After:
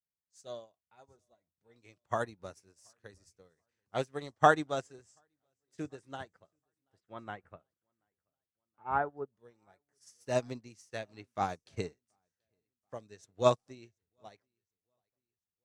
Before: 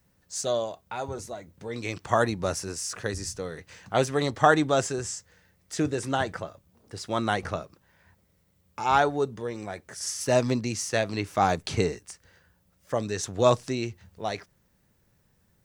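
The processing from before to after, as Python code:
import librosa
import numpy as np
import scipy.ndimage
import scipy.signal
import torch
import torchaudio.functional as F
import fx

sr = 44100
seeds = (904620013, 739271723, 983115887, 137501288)

y = fx.lowpass(x, sr, hz=fx.line((6.99, 3100.0), (9.27, 1600.0)), slope=24, at=(6.99, 9.27), fade=0.02)
y = fx.echo_feedback(y, sr, ms=732, feedback_pct=52, wet_db=-20)
y = fx.upward_expand(y, sr, threshold_db=-40.0, expansion=2.5)
y = y * librosa.db_to_amplitude(-1.5)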